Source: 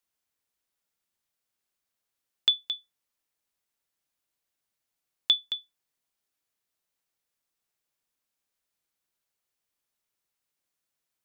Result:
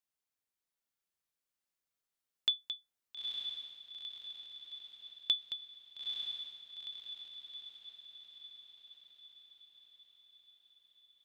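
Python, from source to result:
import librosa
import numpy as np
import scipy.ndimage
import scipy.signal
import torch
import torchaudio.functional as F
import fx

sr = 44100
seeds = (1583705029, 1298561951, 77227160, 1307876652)

y = fx.echo_diffused(x, sr, ms=904, feedback_pct=58, wet_db=-3.5)
y = y * 10.0 ** (-8.0 / 20.0)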